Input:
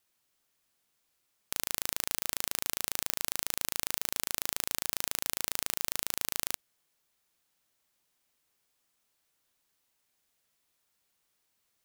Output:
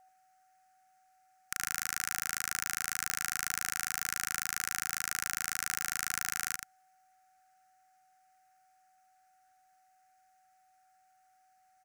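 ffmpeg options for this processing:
-af "firequalizer=gain_entry='entry(160,0);entry(710,-23);entry(1400,13);entry(3400,-8);entry(5800,4);entry(14000,-4)':delay=0.05:min_phase=1,aeval=exprs='val(0)+0.00112*sin(2*PI*750*n/s)':c=same,aecho=1:1:86:0.422,volume=-2dB"

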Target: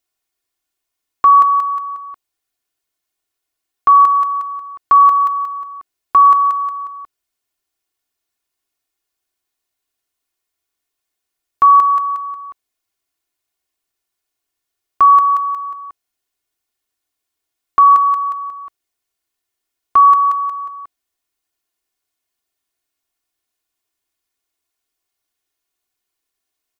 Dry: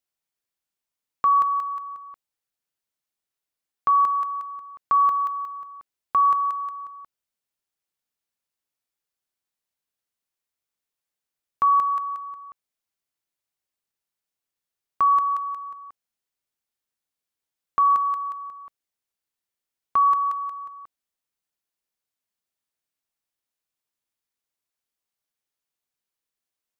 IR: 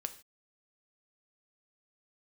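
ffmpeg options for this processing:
-af "aecho=1:1:2.8:0.7,volume=6.5dB"

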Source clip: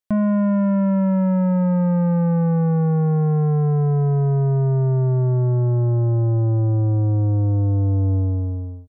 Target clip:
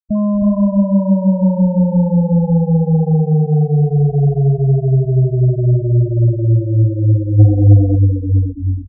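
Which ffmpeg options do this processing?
-filter_complex "[0:a]aeval=exprs='val(0)+0.0141*(sin(2*PI*50*n/s)+sin(2*PI*2*50*n/s)/2+sin(2*PI*3*50*n/s)/3+sin(2*PI*4*50*n/s)/4+sin(2*PI*5*50*n/s)/5)':c=same,acrossover=split=570[a][b];[b]crystalizer=i=2.5:c=0[c];[a][c]amix=inputs=2:normalize=0,asplit=2[d][e];[e]adelay=316,lowpass=f=1.5k:p=1,volume=-3dB,asplit=2[f][g];[g]adelay=316,lowpass=f=1.5k:p=1,volume=0.4,asplit=2[h][i];[i]adelay=316,lowpass=f=1.5k:p=1,volume=0.4,asplit=2[j][k];[k]adelay=316,lowpass=f=1.5k:p=1,volume=0.4,asplit=2[l][m];[m]adelay=316,lowpass=f=1.5k:p=1,volume=0.4[n];[d][f][h][j][l][n]amix=inputs=6:normalize=0,asplit=3[o][p][q];[o]afade=t=out:st=7.38:d=0.02[r];[p]acontrast=44,afade=t=in:st=7.38:d=0.02,afade=t=out:st=7.95:d=0.02[s];[q]afade=t=in:st=7.95:d=0.02[t];[r][s][t]amix=inputs=3:normalize=0,afftfilt=real='re*gte(hypot(re,im),0.2)':imag='im*gte(hypot(re,im),0.2)':win_size=1024:overlap=0.75,volume=3dB"

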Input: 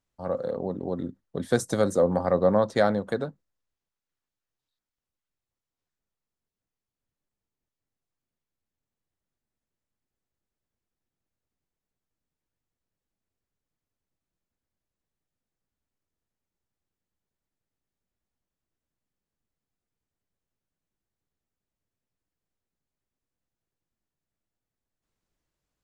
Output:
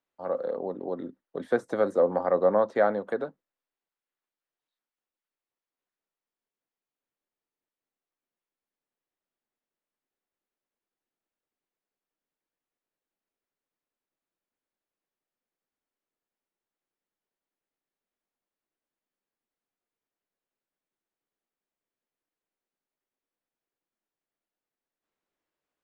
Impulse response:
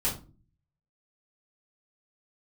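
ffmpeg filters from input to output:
-filter_complex "[0:a]acrossover=split=250 3600:gain=0.1 1 0.251[a][b][c];[a][b][c]amix=inputs=3:normalize=0,acrossover=split=2500[d][e];[e]acompressor=threshold=-56dB:ratio=4:attack=1:release=60[f];[d][f]amix=inputs=2:normalize=0"

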